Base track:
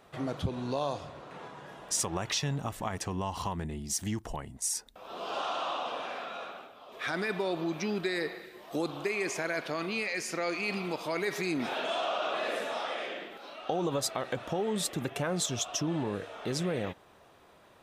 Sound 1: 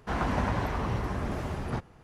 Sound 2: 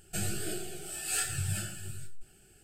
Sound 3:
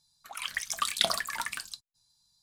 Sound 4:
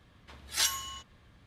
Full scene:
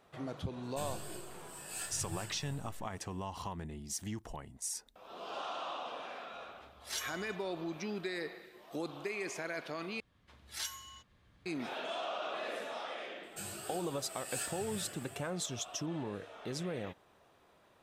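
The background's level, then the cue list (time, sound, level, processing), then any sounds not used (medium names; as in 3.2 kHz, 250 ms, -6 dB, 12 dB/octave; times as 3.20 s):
base track -7 dB
0.63 s: add 2 -10.5 dB
6.33 s: add 4 -11.5 dB
10.00 s: replace with 4 -12 dB + recorder AGC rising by 8 dB/s
13.23 s: add 2 -8 dB + high-pass 260 Hz 6 dB/octave
not used: 1, 3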